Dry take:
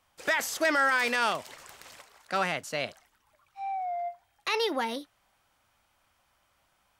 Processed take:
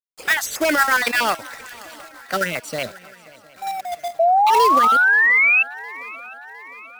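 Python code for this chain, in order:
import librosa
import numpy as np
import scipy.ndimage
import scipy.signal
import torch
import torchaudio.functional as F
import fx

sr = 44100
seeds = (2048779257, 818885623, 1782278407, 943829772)

p1 = fx.spec_dropout(x, sr, seeds[0], share_pct=32)
p2 = fx.level_steps(p1, sr, step_db=10)
p3 = p1 + F.gain(torch.from_numpy(p2), 1.0).numpy()
p4 = fx.harmonic_tremolo(p3, sr, hz=8.0, depth_pct=50, crossover_hz=550.0)
p5 = fx.quant_companded(p4, sr, bits=4)
p6 = fx.spec_paint(p5, sr, seeds[1], shape='rise', start_s=4.19, length_s=1.44, low_hz=650.0, high_hz=2700.0, level_db=-20.0)
p7 = p6 + fx.echo_swing(p6, sr, ms=708, ratio=3, feedback_pct=54, wet_db=-22, dry=0)
y = F.gain(torch.from_numpy(p7), 5.5).numpy()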